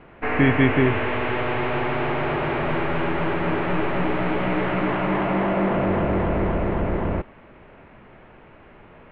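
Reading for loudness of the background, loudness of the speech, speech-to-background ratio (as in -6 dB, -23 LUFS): -24.0 LUFS, -20.5 LUFS, 3.5 dB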